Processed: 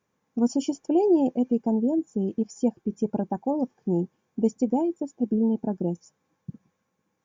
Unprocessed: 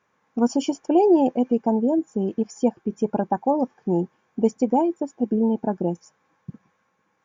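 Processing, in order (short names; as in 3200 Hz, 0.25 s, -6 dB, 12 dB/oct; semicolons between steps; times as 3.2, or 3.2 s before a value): bell 1400 Hz -12 dB 2.7 oct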